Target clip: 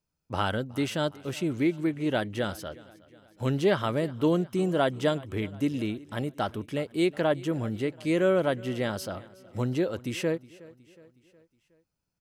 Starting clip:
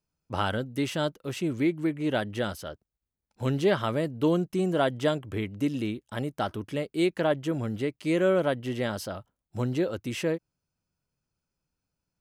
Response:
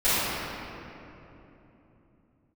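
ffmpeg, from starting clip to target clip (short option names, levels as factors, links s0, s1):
-af "aecho=1:1:366|732|1098|1464:0.0841|0.0438|0.0228|0.0118"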